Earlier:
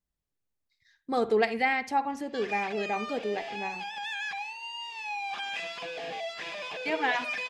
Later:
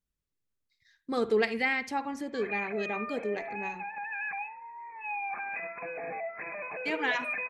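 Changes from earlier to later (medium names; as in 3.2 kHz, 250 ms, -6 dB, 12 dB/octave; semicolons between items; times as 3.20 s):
speech: add peaking EQ 740 Hz -9 dB 0.52 oct; background: add brick-wall FIR low-pass 2.6 kHz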